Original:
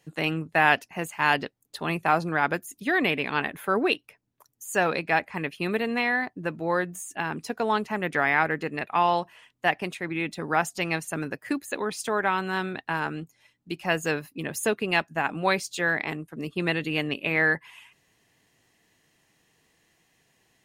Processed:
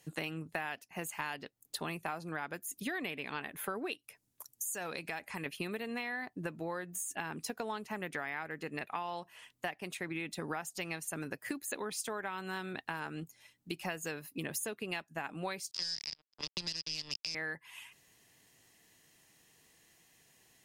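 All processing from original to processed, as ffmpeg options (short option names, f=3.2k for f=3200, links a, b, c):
-filter_complex "[0:a]asettb=1/sr,asplit=3[a][b][c];[a]atrim=end=3.944[d];[b]atrim=start=3.94:end=5.46,asetpts=PTS-STARTPTS,afade=t=in:d=0.004:c=qsin,afade=t=out:st=1.516:d=0.004:c=qsin,equalizer=f=9.3k:w=0.46:g=7,acompressor=threshold=-39dB:ratio=2:attack=3.2:release=140:knee=1:detection=peak[e];[c]atrim=start=5.456[f];[d][e]acrossfade=d=0.004:c1=hsin:c2=qsin[g];[g][f]acrossfade=d=0.004:c1=qsin:c2=hsin,asettb=1/sr,asplit=3[h][i][j];[h]atrim=end=15.714[k];[i]atrim=start=15.71:end=17.35,asetpts=PTS-STARTPTS,afade=t=in:d=0.004:c=qsin,afade=t=out:st=1.636:d=0.004:c=qsin,acrusher=bits=3:mix=0:aa=0.5,acrossover=split=210|3000[l][m][n];[m]acompressor=threshold=-39dB:ratio=6:attack=3.2:release=140:knee=2.83:detection=peak[o];[l][o][n]amix=inputs=3:normalize=0,lowpass=f=5k:t=q:w=15[p];[j]atrim=start=17.346[q];[k][p]acrossfade=d=0.004:c1=hsin:c2=qsin[r];[r][q]acrossfade=d=0.004:c1=qsin:c2=hsin,aemphasis=mode=production:type=cd,acompressor=threshold=-33dB:ratio=12,volume=-2dB"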